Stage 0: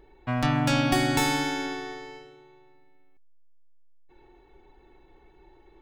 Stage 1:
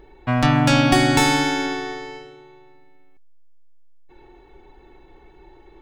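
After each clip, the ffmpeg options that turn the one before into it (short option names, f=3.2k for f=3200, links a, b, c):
-af "equalizer=f=14k:t=o:w=0.36:g=-11.5,volume=7.5dB"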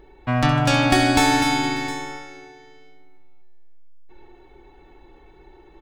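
-af "aecho=1:1:66|151|228|249|590|711:0.282|0.133|0.141|0.447|0.1|0.141,volume=-1.5dB"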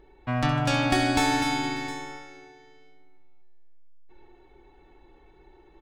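-af "highshelf=f=12k:g=-4.5,volume=-6dB"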